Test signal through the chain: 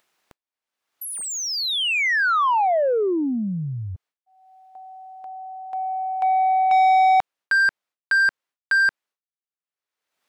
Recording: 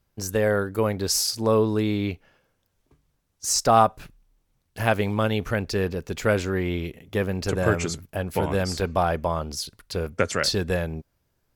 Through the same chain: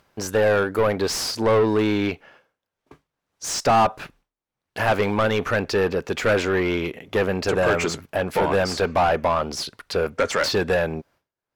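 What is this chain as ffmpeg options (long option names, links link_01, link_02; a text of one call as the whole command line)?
ffmpeg -i in.wav -filter_complex "[0:a]asplit=2[link_01][link_02];[link_02]highpass=frequency=720:poles=1,volume=25dB,asoftclip=type=tanh:threshold=-4.5dB[link_03];[link_01][link_03]amix=inputs=2:normalize=0,lowpass=frequency=1800:poles=1,volume=-6dB,agate=range=-33dB:threshold=-43dB:ratio=3:detection=peak,acompressor=mode=upward:threshold=-31dB:ratio=2.5,volume=-4.5dB" out.wav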